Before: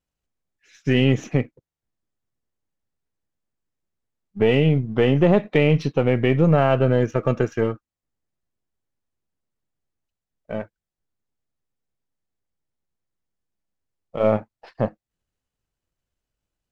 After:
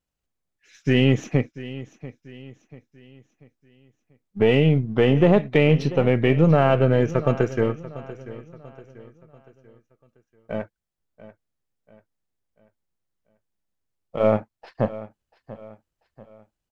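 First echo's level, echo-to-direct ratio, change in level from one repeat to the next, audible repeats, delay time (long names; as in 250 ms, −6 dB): −16.5 dB, −15.5 dB, −7.5 dB, 3, 689 ms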